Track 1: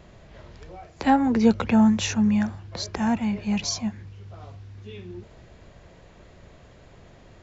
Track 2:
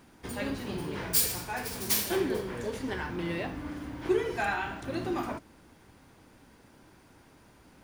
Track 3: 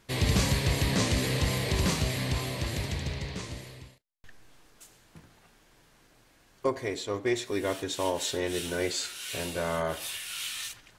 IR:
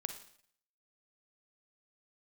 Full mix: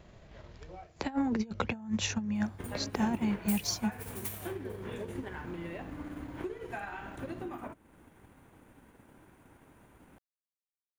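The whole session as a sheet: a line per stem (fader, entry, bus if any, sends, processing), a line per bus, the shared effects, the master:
-8.5 dB, 0.00 s, no send, negative-ratio compressor -22 dBFS, ratio -0.5
-1.0 dB, 2.35 s, no send, bell 4900 Hz -15 dB 0.8 oct; compressor 5:1, threshold -37 dBFS, peak gain reduction 14 dB
off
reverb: off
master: transient shaper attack +3 dB, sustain -5 dB

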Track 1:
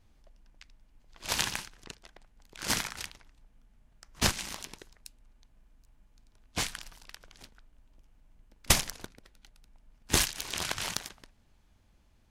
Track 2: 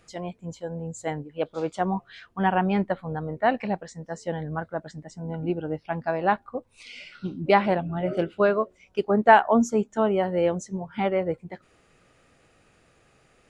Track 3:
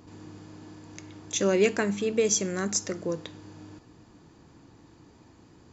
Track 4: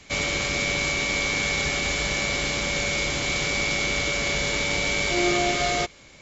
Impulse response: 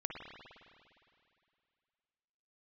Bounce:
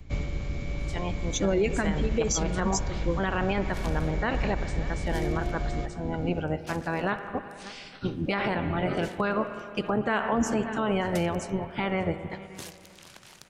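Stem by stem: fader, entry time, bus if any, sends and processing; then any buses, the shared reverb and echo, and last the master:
-17.0 dB, 2.45 s, no send, no echo send, HPF 120 Hz 24 dB/oct
-3.5 dB, 0.80 s, send -9 dB, echo send -22 dB, spectral limiter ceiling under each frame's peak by 16 dB
+1.5 dB, 0.00 s, send -11.5 dB, no echo send, per-bin expansion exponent 2
-8.5 dB, 0.00 s, no send, echo send -18.5 dB, tilt -3.5 dB/oct; auto duck -8 dB, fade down 0.30 s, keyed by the third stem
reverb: on, RT60 2.5 s, pre-delay 51 ms
echo: echo 0.582 s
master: low shelf 210 Hz +8 dB; limiter -16.5 dBFS, peak gain reduction 14.5 dB

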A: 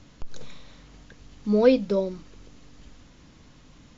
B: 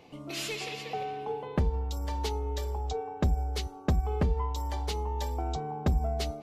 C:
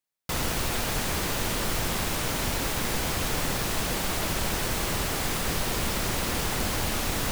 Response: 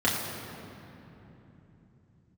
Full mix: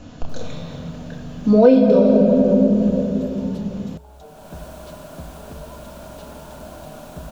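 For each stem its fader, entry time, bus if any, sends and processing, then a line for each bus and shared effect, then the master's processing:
+3.0 dB, 0.00 s, send -6 dB, dry
-13.0 dB, 1.30 s, no send, dry
-16.5 dB, 0.00 s, no send, small resonant body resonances 250/600/980/1400 Hz, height 10 dB, ringing for 25 ms; auto duck -19 dB, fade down 0.45 s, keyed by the first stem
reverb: on, RT60 3.3 s, pre-delay 3 ms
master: thirty-one-band EQ 160 Hz +8 dB, 630 Hz +11 dB, 2000 Hz -9 dB, 5000 Hz -3 dB; compressor 4:1, threshold -10 dBFS, peak gain reduction 12.5 dB

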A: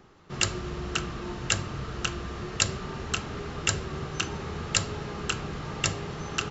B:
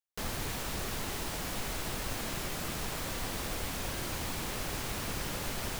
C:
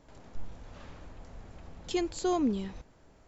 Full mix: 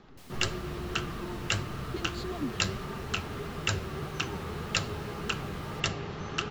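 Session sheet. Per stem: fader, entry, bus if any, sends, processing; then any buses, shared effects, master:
+2.5 dB, 0.00 s, no send, LPF 5000 Hz 12 dB/oct
-11.5 dB, 0.00 s, no send, steep high-pass 1900 Hz
+1.0 dB, 0.00 s, no send, compressor, threshold -35 dBFS, peak gain reduction 11 dB; LFO low-pass square 5.6 Hz 300–4100 Hz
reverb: off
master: flange 1.7 Hz, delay 4.1 ms, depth 7.9 ms, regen +59%

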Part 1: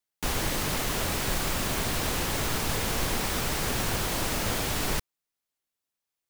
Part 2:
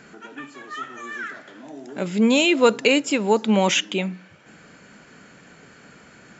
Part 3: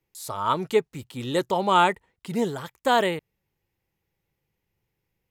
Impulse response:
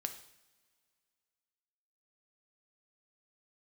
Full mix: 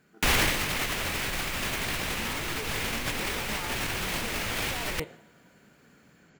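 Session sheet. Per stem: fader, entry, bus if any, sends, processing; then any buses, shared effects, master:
+0.5 dB, 0.00 s, no bus, no send, no echo send, bell 2300 Hz +9 dB 1.3 oct; limiter -20.5 dBFS, peak gain reduction 7.5 dB; AGC gain up to 6 dB
-16.5 dB, 0.00 s, bus A, send -10 dB, echo send -4 dB, compressor, threshold -19 dBFS, peak gain reduction 9 dB; low shelf 310 Hz +6 dB
-10.5 dB, 1.85 s, bus A, send -6.5 dB, no echo send, dry
bus A: 0.0 dB, gate -55 dBFS, range -22 dB; limiter -29 dBFS, peak gain reduction 12 dB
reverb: on, pre-delay 3 ms
echo: echo 0.718 s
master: negative-ratio compressor -28 dBFS, ratio -0.5

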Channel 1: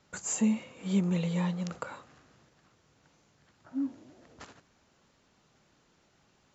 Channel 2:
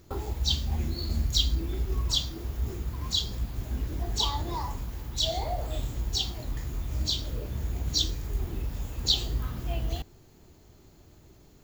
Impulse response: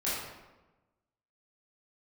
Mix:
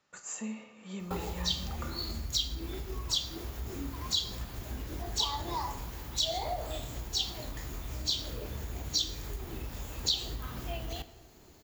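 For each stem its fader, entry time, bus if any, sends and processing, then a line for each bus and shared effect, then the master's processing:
-8.5 dB, 0.00 s, send -13 dB, small resonant body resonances 1200/1800/2600 Hz, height 9 dB
+2.0 dB, 1.00 s, send -18.5 dB, compressor 4:1, threshold -29 dBFS, peak gain reduction 9.5 dB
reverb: on, RT60 1.1 s, pre-delay 16 ms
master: low shelf 290 Hz -9.5 dB

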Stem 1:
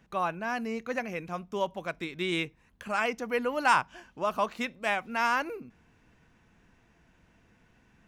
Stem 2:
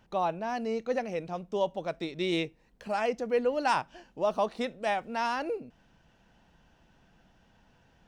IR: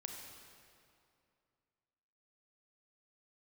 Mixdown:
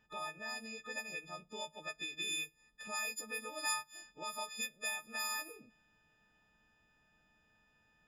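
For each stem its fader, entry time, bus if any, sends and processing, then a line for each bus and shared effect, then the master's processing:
+0.5 dB, 0.00 s, no send, frequency quantiser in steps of 6 st; pre-emphasis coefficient 0.9; low-pass opened by the level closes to 2100 Hz, open at -32 dBFS
-15.0 dB, 0.00 s, no send, compressor 4:1, threshold -36 dBFS, peak gain reduction 12 dB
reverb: off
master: compressor 2:1, threshold -40 dBFS, peak gain reduction 10 dB

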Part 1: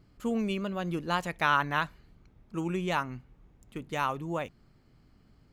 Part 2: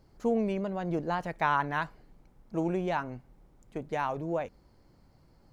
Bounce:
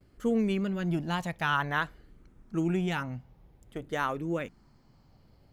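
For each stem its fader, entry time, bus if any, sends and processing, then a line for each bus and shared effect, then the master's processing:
-2.0 dB, 0.00 s, no send, dry
0.0 dB, 0.00 s, no send, endless phaser -0.52 Hz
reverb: off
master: gate with hold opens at -54 dBFS

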